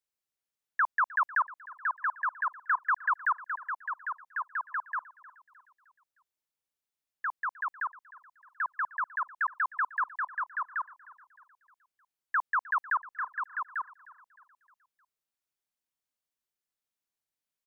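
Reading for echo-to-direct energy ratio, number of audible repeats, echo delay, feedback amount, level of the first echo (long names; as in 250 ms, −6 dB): −18.5 dB, 3, 308 ms, 49%, −19.5 dB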